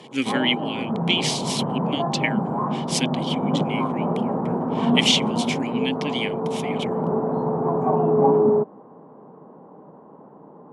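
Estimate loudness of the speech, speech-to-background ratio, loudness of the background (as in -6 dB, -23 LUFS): -25.5 LUFS, -2.0 dB, -23.5 LUFS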